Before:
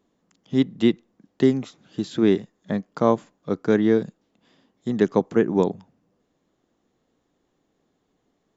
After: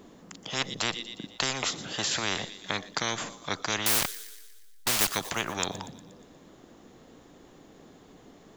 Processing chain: 3.86–5.08 level-crossing sampler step -29 dBFS; thin delay 0.119 s, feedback 54%, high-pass 4400 Hz, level -13.5 dB; spectral compressor 10:1; gain -2.5 dB

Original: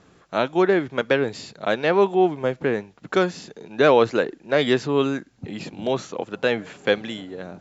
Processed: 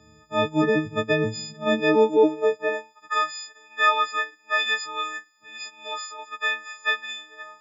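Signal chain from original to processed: frequency quantiser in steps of 6 st; high-pass sweep 68 Hz -> 1300 Hz, 0.83–3.27; low shelf 440 Hz +10 dB; gain -8.5 dB

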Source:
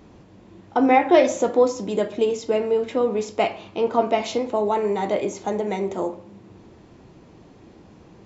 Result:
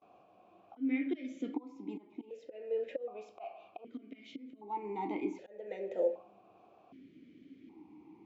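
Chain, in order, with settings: gate with hold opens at -42 dBFS; auto swell 0.527 s; vowel sequencer 1.3 Hz; gain +1.5 dB

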